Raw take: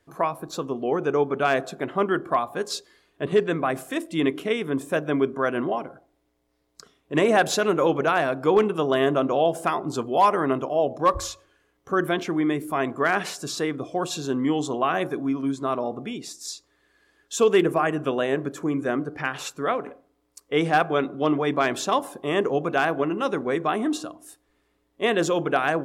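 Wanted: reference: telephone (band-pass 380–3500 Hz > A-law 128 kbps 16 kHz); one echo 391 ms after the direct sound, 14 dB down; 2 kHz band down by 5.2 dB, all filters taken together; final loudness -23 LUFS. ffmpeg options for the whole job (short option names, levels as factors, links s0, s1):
-af "highpass=380,lowpass=3500,equalizer=f=2000:t=o:g=-7,aecho=1:1:391:0.2,volume=1.58" -ar 16000 -c:a pcm_alaw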